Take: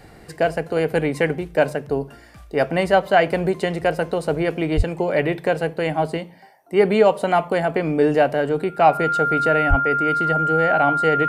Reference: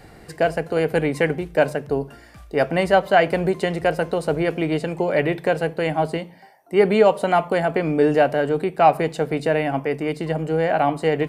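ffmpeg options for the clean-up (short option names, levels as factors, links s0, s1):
-filter_complex "[0:a]bandreject=f=1400:w=30,asplit=3[s0][s1][s2];[s0]afade=t=out:st=4.76:d=0.02[s3];[s1]highpass=f=140:w=0.5412,highpass=f=140:w=1.3066,afade=t=in:st=4.76:d=0.02,afade=t=out:st=4.88:d=0.02[s4];[s2]afade=t=in:st=4.88:d=0.02[s5];[s3][s4][s5]amix=inputs=3:normalize=0,asplit=3[s6][s7][s8];[s6]afade=t=out:st=9.69:d=0.02[s9];[s7]highpass=f=140:w=0.5412,highpass=f=140:w=1.3066,afade=t=in:st=9.69:d=0.02,afade=t=out:st=9.81:d=0.02[s10];[s8]afade=t=in:st=9.81:d=0.02[s11];[s9][s10][s11]amix=inputs=3:normalize=0"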